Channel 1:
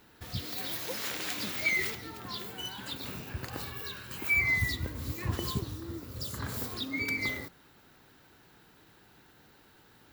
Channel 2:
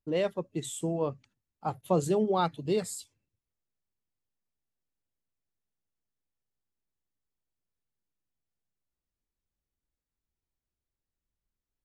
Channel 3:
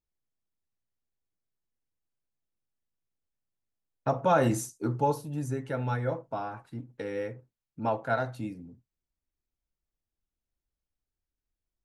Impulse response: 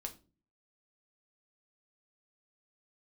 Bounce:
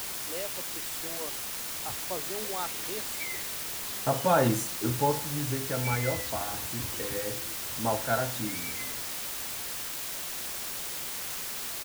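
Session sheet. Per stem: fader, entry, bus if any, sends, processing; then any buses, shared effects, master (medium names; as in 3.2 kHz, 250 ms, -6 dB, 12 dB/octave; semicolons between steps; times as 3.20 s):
-11.0 dB, 1.55 s, no send, none
-7.0 dB, 0.20 s, no send, frequency weighting A
+0.5 dB, 0.00 s, no send, de-hum 50.78 Hz, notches 28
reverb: none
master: word length cut 6-bit, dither triangular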